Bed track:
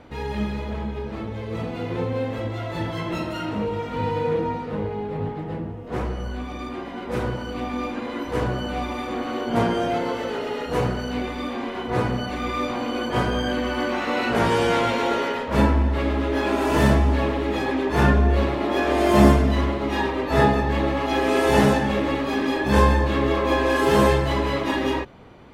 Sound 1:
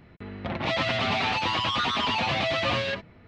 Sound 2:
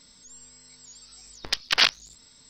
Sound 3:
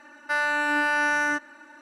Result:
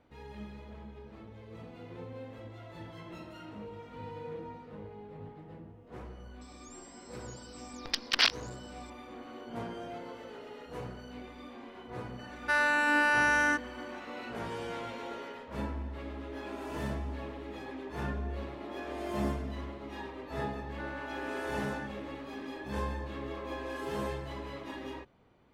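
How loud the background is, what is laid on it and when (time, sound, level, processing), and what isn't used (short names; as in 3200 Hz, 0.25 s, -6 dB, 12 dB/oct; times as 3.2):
bed track -18.5 dB
6.41 add 2 -6 dB
12.19 add 3 -2.5 dB
20.49 add 3 -17 dB + LPF 1600 Hz 6 dB/oct
not used: 1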